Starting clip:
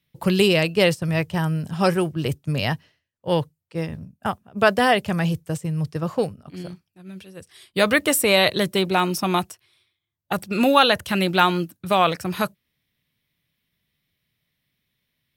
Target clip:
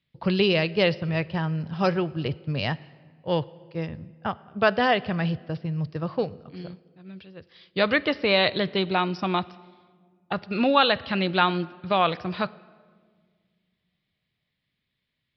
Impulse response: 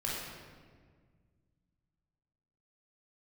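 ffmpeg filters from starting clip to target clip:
-filter_complex "[0:a]asplit=2[a][b];[b]highpass=190[c];[1:a]atrim=start_sample=2205[d];[c][d]afir=irnorm=-1:irlink=0,volume=-22.5dB[e];[a][e]amix=inputs=2:normalize=0,aresample=11025,aresample=44100,volume=-4dB"

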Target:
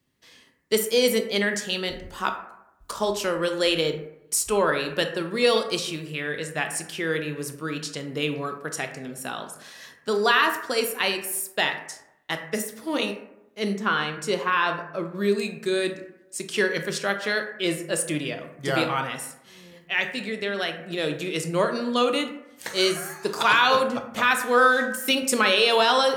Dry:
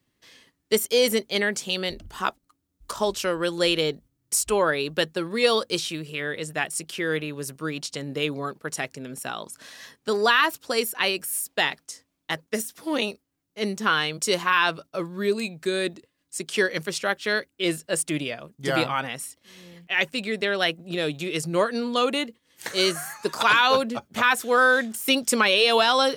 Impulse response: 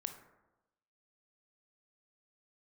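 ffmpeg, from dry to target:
-filter_complex "[0:a]asettb=1/sr,asplit=3[a][b][c];[a]atrim=end=13.734[d];[b]atrim=start=13.73:end=15.15,asetpts=PTS-STARTPTS,afade=t=in:d=0.004:c=qsin,afade=t=out:st=1.416:d=0.004:c=qsin,highshelf=f=3.3k:g=-10[e];[c]atrim=start=15.146[f];[d][e]acrossfade=d=0.004:c1=hsin:c2=qsin[g];[g][f]acrossfade=d=0.004:c1=qsin:c2=hsin,asettb=1/sr,asplit=3[h][i][j];[h]atrim=end=20.004[k];[i]atrim=start=20:end=20.8,asetpts=PTS-STARTPTS,afade=t=in:d=0.004:c=qsin,afade=t=out:st=0.796:d=0.004:c=qsin,acompressor=threshold=-31dB:ratio=1.5[l];[j]atrim=start=20.796[m];[k][l]acrossfade=d=0.004:c1=hsin:c2=qsin[n];[n][m]acrossfade=d=0.004:c1=qsin:c2=hsin[o];[1:a]atrim=start_sample=2205,asetrate=52920,aresample=44100[p];[o][p]afir=irnorm=-1:irlink=0,volume=3.5dB"

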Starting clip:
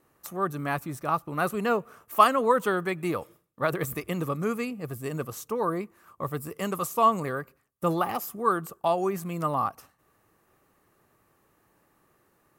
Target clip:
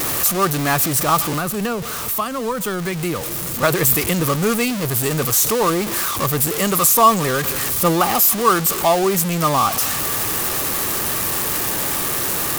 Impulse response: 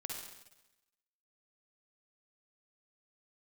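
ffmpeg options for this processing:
-filter_complex "[0:a]aeval=exprs='val(0)+0.5*0.0422*sgn(val(0))':c=same,highshelf=f=3.5k:g=10.5,asettb=1/sr,asplit=3[a][b][c];[a]atrim=end=1.334[d];[b]atrim=start=1.33:end=3.63,asetpts=PTS-STARTPTS,afade=t=in:d=0.004:c=qsin,afade=t=out:st=2.296:d=0.004:c=qsin,acrossover=split=210[e][f];[f]acompressor=threshold=-28dB:ratio=5[g];[e][g]amix=inputs=2:normalize=0[h];[c]atrim=start=3.626[i];[d][h]acrossfade=d=0.004:c1=hsin:c2=qsin[j];[j][i]acrossfade=d=0.004:c1=qsin:c2=hsin,volume=6.5dB"

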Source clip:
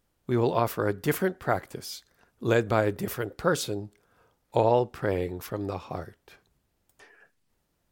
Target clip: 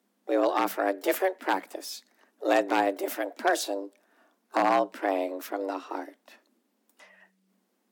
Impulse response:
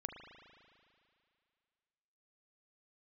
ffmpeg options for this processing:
-filter_complex "[0:a]asplit=2[a][b];[b]asetrate=66075,aresample=44100,atempo=0.66742,volume=-17dB[c];[a][c]amix=inputs=2:normalize=0,aeval=exprs='0.188*(abs(mod(val(0)/0.188+3,4)-2)-1)':c=same,afreqshift=190"

